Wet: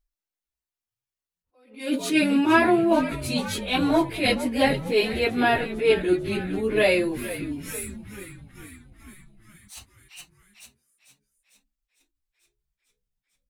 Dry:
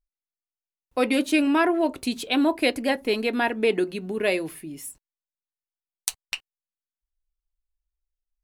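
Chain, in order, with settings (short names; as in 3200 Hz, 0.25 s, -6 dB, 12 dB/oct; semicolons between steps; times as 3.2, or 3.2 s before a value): frequency-shifting echo 0.28 s, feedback 65%, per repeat -71 Hz, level -13.5 dB; plain phase-vocoder stretch 1.6×; attack slew limiter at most 140 dB/s; gain +5 dB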